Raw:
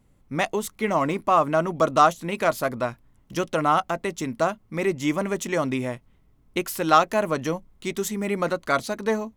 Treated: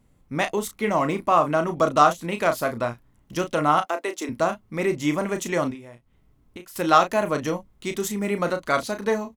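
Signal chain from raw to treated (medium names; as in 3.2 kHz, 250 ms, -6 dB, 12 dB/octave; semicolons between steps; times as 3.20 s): 3.82–4.29 s: steep high-pass 280 Hz 36 dB/octave; 5.71–6.76 s: compression 6:1, threshold -40 dBFS, peak gain reduction 18 dB; doubling 34 ms -8.5 dB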